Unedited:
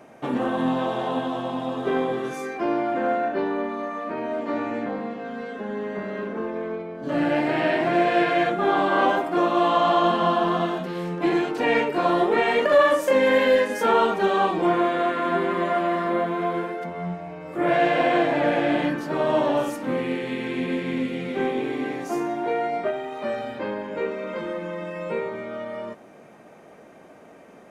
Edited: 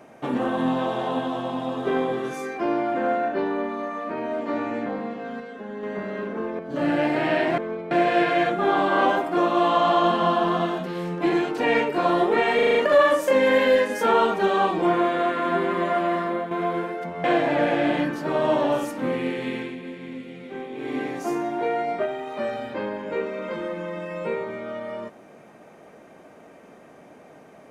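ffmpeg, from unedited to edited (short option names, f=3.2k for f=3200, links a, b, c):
-filter_complex "[0:a]asplit=15[a][b][c][d][e][f][g][h][i][j][k][l][m][n][o];[a]atrim=end=5.402[p];[b]atrim=start=5.398:end=5.832,asetpts=PTS-STARTPTS,volume=-4.5dB[q];[c]atrim=start=5.828:end=6.592[r];[d]atrim=start=6.918:end=7.912[s];[e]atrim=start=6.588:end=6.922[t];[f]atrim=start=7.908:end=12.592[u];[g]atrim=start=12.548:end=12.592[v];[h]atrim=start=12.548:end=12.592[w];[i]atrim=start=12.548:end=12.592[x];[j]atrim=start=12.548:end=12.592[y];[k]atrim=start=12.548:end=16.31,asetpts=PTS-STARTPTS,afade=t=out:st=3.422:d=0.34:silence=0.421697[z];[l]atrim=start=16.31:end=17.042,asetpts=PTS-STARTPTS,afade=t=in:d=0.004:c=hsin:silence=0.421697[aa];[m]atrim=start=18.088:end=20.61,asetpts=PTS-STARTPTS,afade=t=out:st=2.312:d=0.21:silence=0.316228[ab];[n]atrim=start=20.61:end=21.59,asetpts=PTS-STARTPTS,volume=-10dB[ac];[o]atrim=start=21.59,asetpts=PTS-STARTPTS,afade=t=in:d=0.21:silence=0.316228[ad];[p][q]acrossfade=d=0.004:c1=hsin:c2=hsin[ae];[ae][r]acrossfade=d=0.004:c1=hsin:c2=hsin[af];[af][s]acrossfade=d=0.004:c1=hsin:c2=hsin[ag];[ag][t]acrossfade=d=0.004:c1=hsin:c2=hsin[ah];[ah][u]acrossfade=d=0.004:c1=hsin:c2=hsin[ai];[ai][v]acrossfade=d=0.004:c1=hsin:c2=hsin[aj];[aj][w]acrossfade=d=0.004:c1=hsin:c2=hsin[ak];[ak][x]acrossfade=d=0.004:c1=hsin:c2=hsin[al];[al][y]acrossfade=d=0.004:c1=hsin:c2=hsin[am];[z][aa]concat=n=2:v=0:a=1[an];[am][an]acrossfade=d=0.004:c1=hsin:c2=hsin[ao];[ab][ac][ad]concat=n=3:v=0:a=1[ap];[ao][ap]acrossfade=d=0.004:c1=hsin:c2=hsin"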